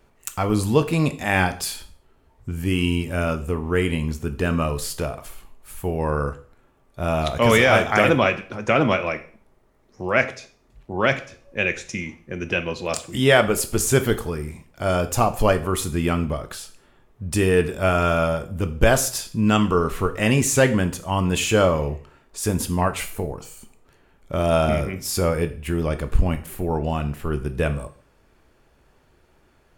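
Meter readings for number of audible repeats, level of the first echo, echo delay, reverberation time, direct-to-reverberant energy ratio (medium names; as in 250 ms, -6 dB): no echo, no echo, no echo, 0.45 s, 9.0 dB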